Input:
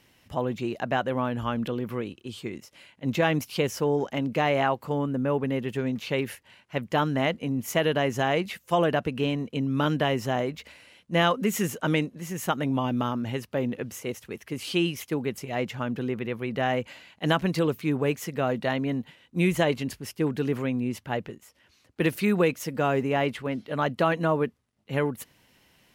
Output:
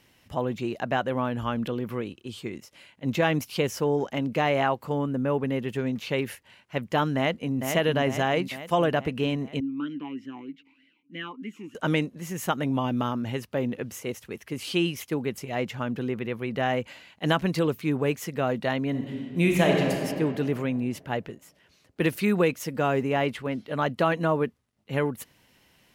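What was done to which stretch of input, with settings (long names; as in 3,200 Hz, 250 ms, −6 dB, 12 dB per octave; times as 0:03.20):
0:07.16–0:07.57: delay throw 450 ms, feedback 60%, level −5.5 dB
0:09.60–0:11.75: formant filter swept between two vowels i-u 3.2 Hz
0:18.90–0:20.01: thrown reverb, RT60 2.3 s, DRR 0 dB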